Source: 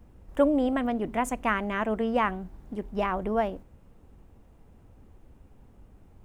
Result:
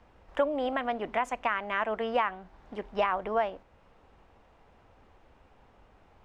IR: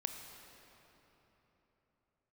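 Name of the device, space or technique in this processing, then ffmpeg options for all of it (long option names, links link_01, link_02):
DJ mixer with the lows and highs turned down: -filter_complex "[0:a]acrossover=split=540 5400:gain=0.158 1 0.0708[link_01][link_02][link_03];[link_01][link_02][link_03]amix=inputs=3:normalize=0,alimiter=limit=-23.5dB:level=0:latency=1:release=448,volume=7dB"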